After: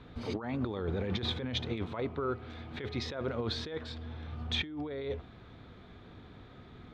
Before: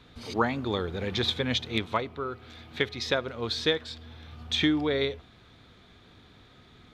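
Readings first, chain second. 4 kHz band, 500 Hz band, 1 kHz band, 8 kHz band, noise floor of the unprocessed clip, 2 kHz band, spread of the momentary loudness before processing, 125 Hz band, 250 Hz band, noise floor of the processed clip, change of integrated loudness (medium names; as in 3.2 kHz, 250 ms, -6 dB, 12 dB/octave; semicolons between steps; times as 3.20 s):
-8.5 dB, -6.5 dB, -9.0 dB, -10.0 dB, -56 dBFS, -10.5 dB, 17 LU, -1.5 dB, -6.5 dB, -53 dBFS, -7.5 dB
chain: low-pass 1.2 kHz 6 dB/octave; compressor with a negative ratio -35 dBFS, ratio -1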